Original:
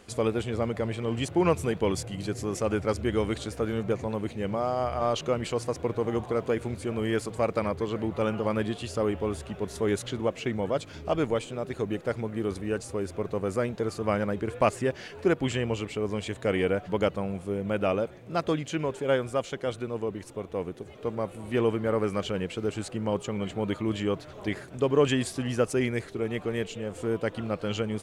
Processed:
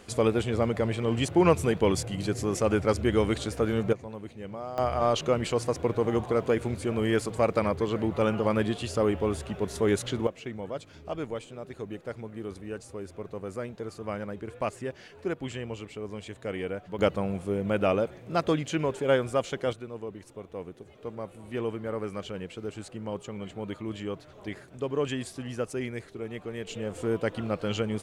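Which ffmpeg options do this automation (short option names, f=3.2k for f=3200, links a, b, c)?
-af "asetnsamples=n=441:p=0,asendcmd='3.93 volume volume -9dB;4.78 volume volume 2dB;10.27 volume volume -7.5dB;16.99 volume volume 1.5dB;19.73 volume volume -6.5dB;26.67 volume volume 0.5dB',volume=2.5dB"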